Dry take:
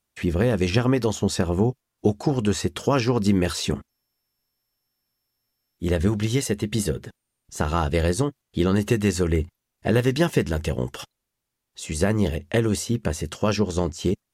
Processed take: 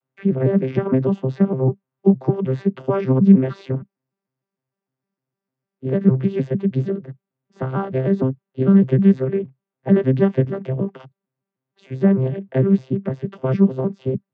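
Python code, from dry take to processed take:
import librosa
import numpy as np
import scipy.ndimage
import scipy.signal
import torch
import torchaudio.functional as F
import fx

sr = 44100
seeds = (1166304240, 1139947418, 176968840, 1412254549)

y = fx.vocoder_arp(x, sr, chord='bare fifth', root=48, every_ms=152)
y = fx.bandpass_edges(y, sr, low_hz=130.0, high_hz=2200.0)
y = y * 10.0 ** (7.0 / 20.0)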